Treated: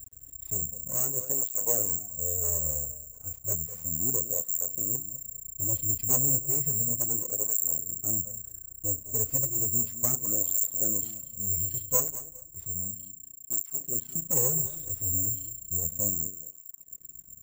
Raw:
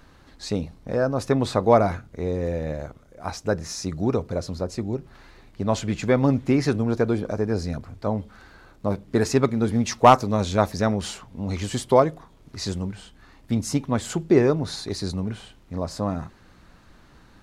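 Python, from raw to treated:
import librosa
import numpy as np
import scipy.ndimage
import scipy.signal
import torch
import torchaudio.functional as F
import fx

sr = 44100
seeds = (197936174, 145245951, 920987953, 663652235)

p1 = fx.peak_eq(x, sr, hz=510.0, db=11.0, octaves=0.25)
p2 = fx.hpss(p1, sr, part='harmonic', gain_db=5)
p3 = fx.rider(p2, sr, range_db=10, speed_s=2.0)
p4 = p2 + (p3 * librosa.db_to_amplitude(-1.5))
p5 = fx.tone_stack(p4, sr, knobs='10-0-1')
p6 = np.maximum(p5, 0.0)
p7 = fx.echo_feedback(p6, sr, ms=205, feedback_pct=22, wet_db=-13.5)
p8 = (np.kron(scipy.signal.resample_poly(p7, 1, 6), np.eye(6)[0]) * 6)[:len(p7)]
y = fx.flanger_cancel(p8, sr, hz=0.33, depth_ms=6.0)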